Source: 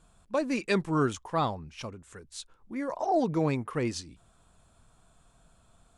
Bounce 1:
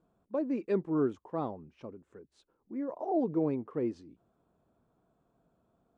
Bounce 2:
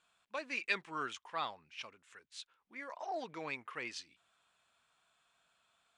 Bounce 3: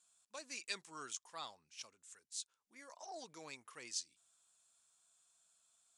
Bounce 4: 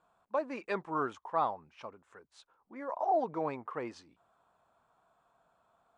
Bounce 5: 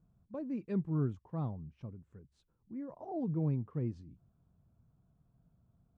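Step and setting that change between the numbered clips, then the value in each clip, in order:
band-pass filter, frequency: 350 Hz, 2.5 kHz, 7 kHz, 900 Hz, 130 Hz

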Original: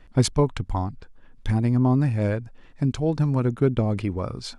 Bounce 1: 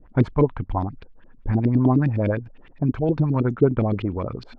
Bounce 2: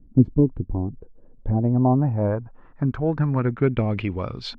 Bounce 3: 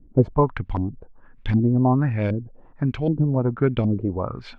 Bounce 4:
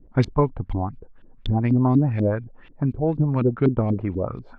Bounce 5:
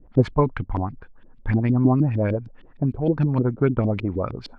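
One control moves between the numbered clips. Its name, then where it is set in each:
LFO low-pass, rate: 9.7 Hz, 0.22 Hz, 1.3 Hz, 4.1 Hz, 6.5 Hz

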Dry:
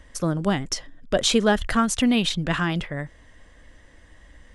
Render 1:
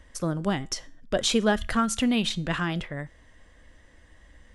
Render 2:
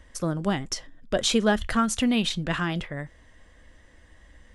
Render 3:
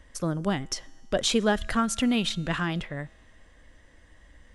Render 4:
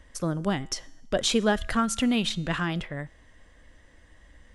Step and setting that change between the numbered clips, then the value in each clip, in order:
feedback comb, decay: 0.37 s, 0.16 s, 2.2 s, 0.99 s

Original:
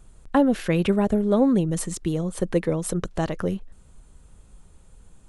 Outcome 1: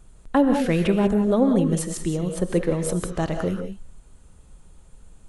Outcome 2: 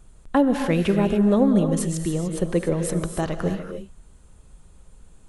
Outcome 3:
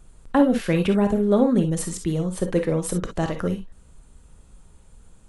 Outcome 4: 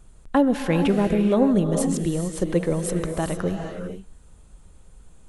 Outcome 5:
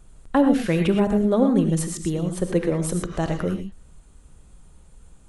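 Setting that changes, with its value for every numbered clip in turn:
gated-style reverb, gate: 210 ms, 320 ms, 80 ms, 480 ms, 140 ms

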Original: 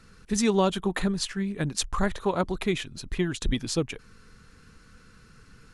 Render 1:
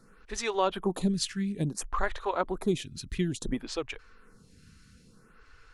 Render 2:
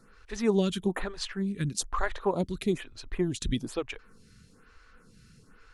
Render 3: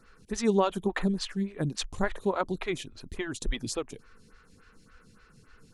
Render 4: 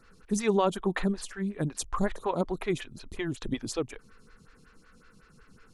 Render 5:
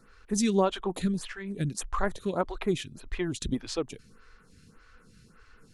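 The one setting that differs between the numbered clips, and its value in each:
lamp-driven phase shifter, rate: 0.58 Hz, 1.1 Hz, 3.5 Hz, 5.4 Hz, 1.7 Hz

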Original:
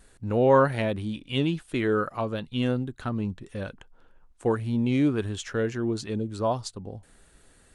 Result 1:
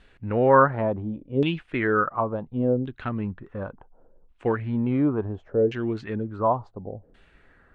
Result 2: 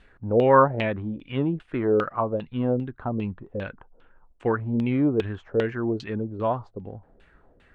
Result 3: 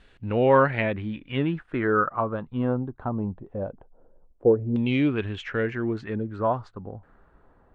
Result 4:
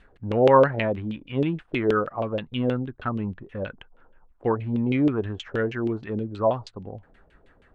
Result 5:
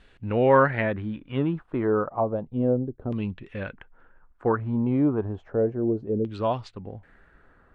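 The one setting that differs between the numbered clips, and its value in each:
LFO low-pass, rate: 0.7 Hz, 2.5 Hz, 0.21 Hz, 6.3 Hz, 0.32 Hz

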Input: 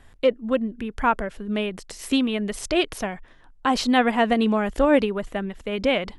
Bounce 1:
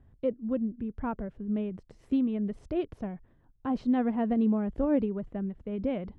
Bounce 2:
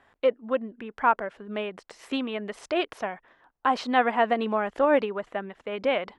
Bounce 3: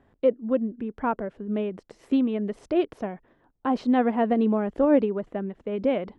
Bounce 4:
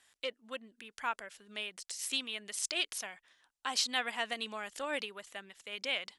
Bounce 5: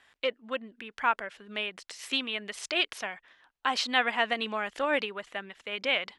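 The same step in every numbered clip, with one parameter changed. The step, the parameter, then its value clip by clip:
band-pass filter, frequency: 110 Hz, 970 Hz, 330 Hz, 7.4 kHz, 2.7 kHz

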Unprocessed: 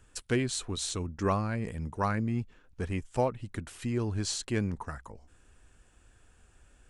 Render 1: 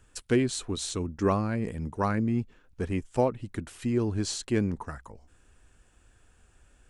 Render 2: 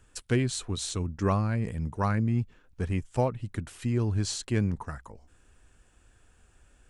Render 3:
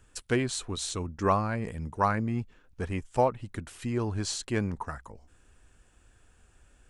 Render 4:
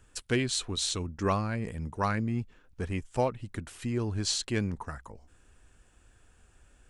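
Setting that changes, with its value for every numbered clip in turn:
dynamic bell, frequency: 310 Hz, 120 Hz, 910 Hz, 3.6 kHz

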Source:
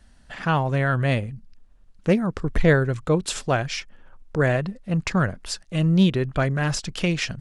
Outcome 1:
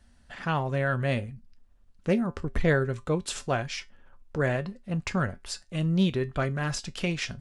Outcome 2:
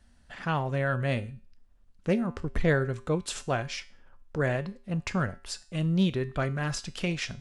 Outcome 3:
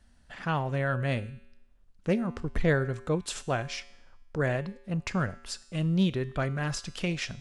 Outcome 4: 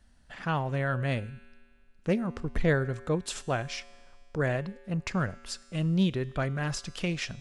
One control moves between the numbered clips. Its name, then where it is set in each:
feedback comb, decay: 0.19 s, 0.43 s, 0.89 s, 1.9 s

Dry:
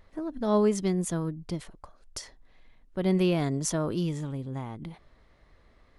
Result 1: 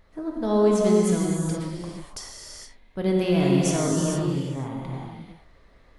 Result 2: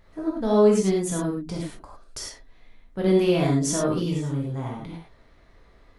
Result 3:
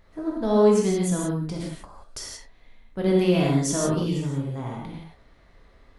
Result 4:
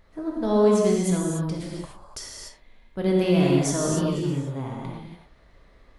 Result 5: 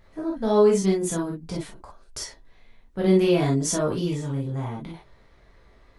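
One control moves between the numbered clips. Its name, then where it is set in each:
gated-style reverb, gate: 490 ms, 130 ms, 200 ms, 320 ms, 80 ms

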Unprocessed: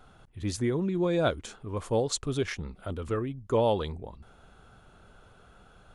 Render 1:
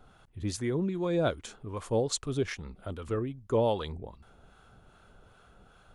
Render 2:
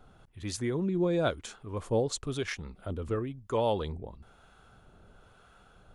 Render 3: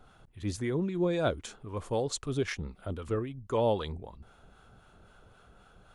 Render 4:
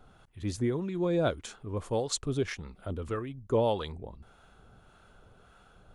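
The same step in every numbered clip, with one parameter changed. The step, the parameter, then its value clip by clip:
harmonic tremolo, rate: 2.5 Hz, 1 Hz, 3.8 Hz, 1.7 Hz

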